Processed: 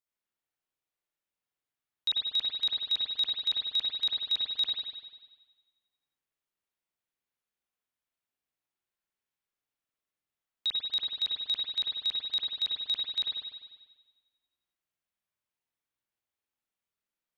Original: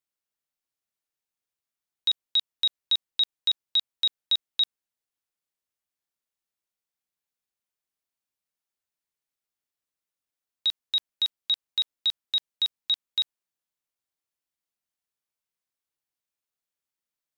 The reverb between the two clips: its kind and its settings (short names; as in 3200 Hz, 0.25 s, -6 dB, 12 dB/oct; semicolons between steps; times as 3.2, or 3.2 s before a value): spring tank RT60 1.3 s, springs 49 ms, chirp 55 ms, DRR -5.5 dB; gain -5.5 dB